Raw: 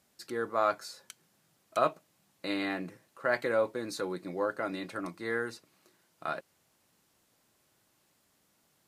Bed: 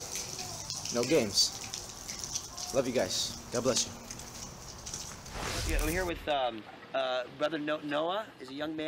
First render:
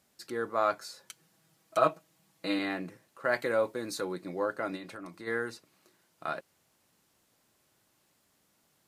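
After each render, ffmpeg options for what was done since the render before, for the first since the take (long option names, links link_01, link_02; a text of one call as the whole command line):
ffmpeg -i in.wav -filter_complex "[0:a]asettb=1/sr,asplit=3[link_01][link_02][link_03];[link_01]atrim=end=1.064[link_04];[link_02]atrim=start=1.06:end=2.59,asetpts=PTS-STARTPTS,afade=type=in:duration=0.004:curve=qsin,afade=type=out:start_time=1.526:duration=0.004:curve=qsin,aecho=1:1:6.2:0.65,atrim=end_sample=67473[link_05];[link_03]atrim=start=2.586[link_06];[link_04][link_05]acrossfade=duration=0.004:curve1=hsin:curve2=qsin[link_07];[link_07][link_06]acrossfade=duration=0.004:curve1=qsin:curve2=hsin,asettb=1/sr,asplit=3[link_08][link_09][link_10];[link_08]atrim=end=3.244[link_11];[link_09]atrim=start=3.24:end=4.04,asetpts=PTS-STARTPTS,afade=type=in:duration=0.004:curve=qsin,afade=type=out:start_time=0.796:duration=0.004:curve=qsin,highshelf=frequency=7400:gain=5.5[link_12];[link_10]atrim=start=4.036[link_13];[link_11][link_12]acrossfade=duration=0.004:curve1=hsin:curve2=qsin[link_14];[link_14][link_13]acrossfade=duration=0.004:curve1=qsin:curve2=hsin,asplit=3[link_15][link_16][link_17];[link_15]afade=type=out:start_time=4.76:duration=0.02[link_18];[link_16]acompressor=threshold=-41dB:ratio=3:attack=3.2:release=140:knee=1:detection=peak,afade=type=in:start_time=4.76:duration=0.02,afade=type=out:start_time=5.26:duration=0.02[link_19];[link_17]afade=type=in:start_time=5.26:duration=0.02[link_20];[link_18][link_19][link_20]amix=inputs=3:normalize=0" out.wav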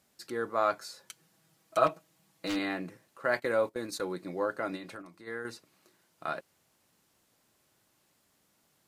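ffmpeg -i in.wav -filter_complex "[0:a]asplit=3[link_01][link_02][link_03];[link_01]afade=type=out:start_time=1.86:duration=0.02[link_04];[link_02]aeval=exprs='0.0501*(abs(mod(val(0)/0.0501+3,4)-2)-1)':channel_layout=same,afade=type=in:start_time=1.86:duration=0.02,afade=type=out:start_time=2.55:duration=0.02[link_05];[link_03]afade=type=in:start_time=2.55:duration=0.02[link_06];[link_04][link_05][link_06]amix=inputs=3:normalize=0,asettb=1/sr,asplit=3[link_07][link_08][link_09];[link_07]atrim=end=3.334[link_10];[link_08]atrim=start=3.33:end=4.17,asetpts=PTS-STARTPTS,afade=type=in:duration=0.004:curve=qsin,afade=type=out:start_time=0.836:duration=0.004:curve=qsin,agate=range=-14dB:threshold=-40dB:ratio=16:release=100:detection=peak[link_11];[link_09]atrim=start=4.166[link_12];[link_10][link_11]acrossfade=duration=0.004:curve1=hsin:curve2=qsin[link_13];[link_13][link_12]acrossfade=duration=0.004:curve1=qsin:curve2=hsin,asplit=3[link_14][link_15][link_16];[link_14]atrim=end=5.022[link_17];[link_15]atrim=start=5.018:end=5.452,asetpts=PTS-STARTPTS,volume=-6.5dB[link_18];[link_16]atrim=start=5.448[link_19];[link_17][link_18]acrossfade=duration=0.004:curve1=hsin:curve2=hsin[link_20];[link_20][link_19]acrossfade=duration=0.004:curve1=hsin:curve2=hsin" out.wav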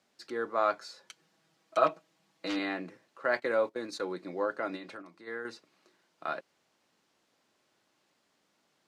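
ffmpeg -i in.wav -filter_complex "[0:a]acrossover=split=190 6600:gain=0.224 1 0.141[link_01][link_02][link_03];[link_01][link_02][link_03]amix=inputs=3:normalize=0" out.wav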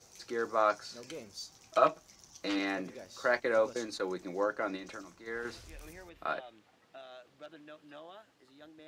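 ffmpeg -i in.wav -i bed.wav -filter_complex "[1:a]volume=-18.5dB[link_01];[0:a][link_01]amix=inputs=2:normalize=0" out.wav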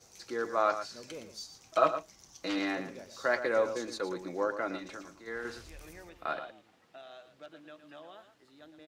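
ffmpeg -i in.wav -af "aecho=1:1:115:0.299" out.wav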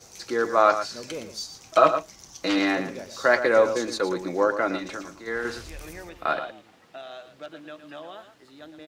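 ffmpeg -i in.wav -af "volume=9.5dB,alimiter=limit=-3dB:level=0:latency=1" out.wav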